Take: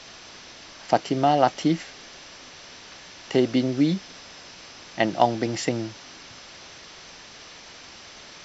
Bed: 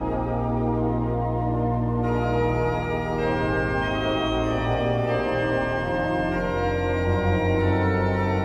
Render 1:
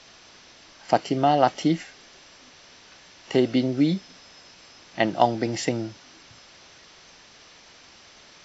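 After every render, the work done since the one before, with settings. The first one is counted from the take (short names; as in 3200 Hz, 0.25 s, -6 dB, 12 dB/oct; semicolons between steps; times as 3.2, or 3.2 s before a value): noise print and reduce 6 dB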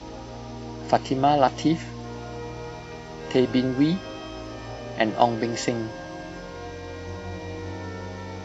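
add bed -13 dB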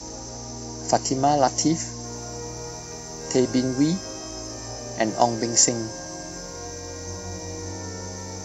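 resonant high shelf 4600 Hz +12.5 dB, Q 3; notch 1300 Hz, Q 16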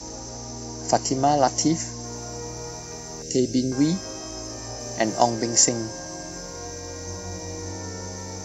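3.22–3.72 Butterworth band-stop 1100 Hz, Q 0.5; 4.8–5.3 high shelf 5700 Hz +5 dB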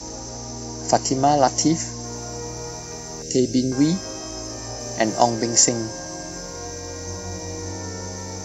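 gain +2.5 dB; limiter -2 dBFS, peak gain reduction 1 dB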